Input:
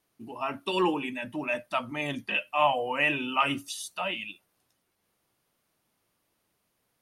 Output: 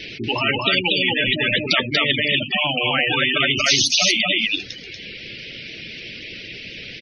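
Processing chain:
in parallel at +3 dB: downward compressor, threshold −33 dBFS, peak gain reduction 14 dB
on the sum: hum removal 49.05 Hz, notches 6
reverb reduction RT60 0.55 s
drawn EQ curve 470 Hz 0 dB, 1,000 Hz −21 dB, 2,400 Hz +13 dB, 5,500 Hz +2 dB, 8,200 Hz −18 dB
gate on every frequency bin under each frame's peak −20 dB strong
single-tap delay 237 ms −5 dB
speech leveller 2 s
every bin compressed towards the loudest bin 10 to 1

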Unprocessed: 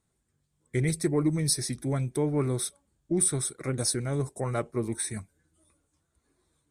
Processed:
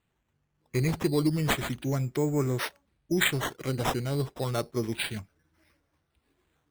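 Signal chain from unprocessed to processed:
sample-and-hold swept by an LFO 8×, swing 60% 0.31 Hz

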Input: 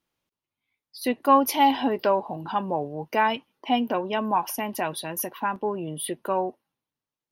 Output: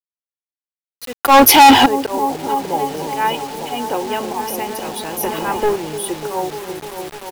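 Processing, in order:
volume swells 116 ms
comb filter 2.4 ms, depth 48%
on a send: echo whose low-pass opens from repeat to repeat 298 ms, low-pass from 400 Hz, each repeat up 1 octave, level −3 dB
0:05.23–0:05.76: on the sum: leveller curve on the samples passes 2
low shelf with overshoot 130 Hz +6.5 dB, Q 1.5
0:01.21–0:01.86: leveller curve on the samples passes 5
bit reduction 6 bits
level +4 dB

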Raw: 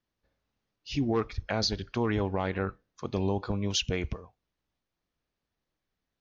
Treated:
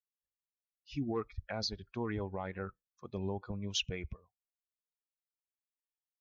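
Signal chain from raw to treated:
spectral dynamics exaggerated over time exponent 1.5
0:03.32–0:03.93: dynamic equaliser 2,100 Hz, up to +6 dB, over −44 dBFS, Q 1
level −6.5 dB

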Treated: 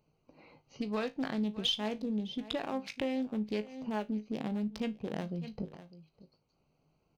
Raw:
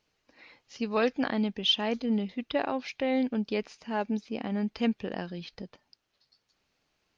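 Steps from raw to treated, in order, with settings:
adaptive Wiener filter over 25 samples
parametric band 150 Hz +11.5 dB 0.32 octaves
on a send: single-tap delay 602 ms −22 dB
on the sum: downward compressor 6 to 1, threshold −37 dBFS, peak gain reduction 15.5 dB
high-shelf EQ 5,100 Hz +12 dB
in parallel at −8.5 dB: asymmetric clip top −41 dBFS
on the sum: tuned comb filter 53 Hz, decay 0.2 s, harmonics all, mix 70%
level +5.5 dB

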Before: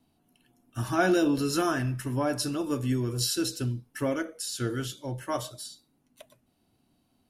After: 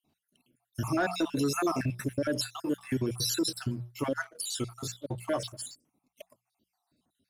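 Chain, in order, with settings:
time-frequency cells dropped at random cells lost 57%
high-pass filter 85 Hz 6 dB per octave
mains-hum notches 60/120/180 Hz
leveller curve on the samples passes 1
brickwall limiter −21 dBFS, peak gain reduction 7 dB

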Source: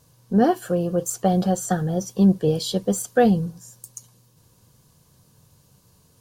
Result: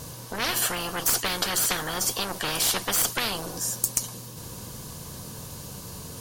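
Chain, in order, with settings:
one-sided soft clipper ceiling −18.5 dBFS
every bin compressed towards the loudest bin 10 to 1
level +4.5 dB

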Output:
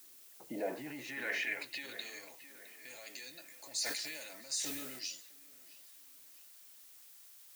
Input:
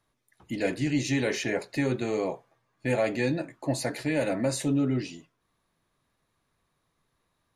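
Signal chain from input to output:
high-pass filter 120 Hz 24 dB per octave
brickwall limiter −29 dBFS, peak gain reduction 13.5 dB
band-pass filter sweep 330 Hz → 5,700 Hz, 0:00.05–0:02.20
background noise blue −66 dBFS
delay with a low-pass on its return 661 ms, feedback 40%, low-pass 2,700 Hz, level −13 dB
0:03.44–0:05.03: level that may fall only so fast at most 31 dB per second
level +8.5 dB

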